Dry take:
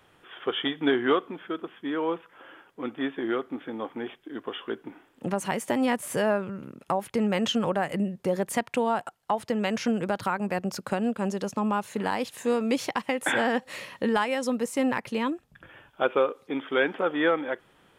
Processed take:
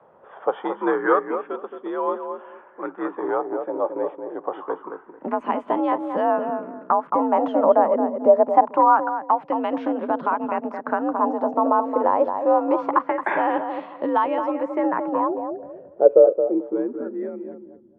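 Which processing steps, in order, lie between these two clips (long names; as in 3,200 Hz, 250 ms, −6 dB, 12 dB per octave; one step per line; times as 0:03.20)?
frequency shifter +55 Hz
low-pass filter sweep 1,000 Hz → 240 Hz, 0:14.63–0:17.30
feedback echo with a low-pass in the loop 221 ms, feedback 25%, low-pass 1,300 Hz, level −6 dB
auto-filter bell 0.25 Hz 540–3,600 Hz +11 dB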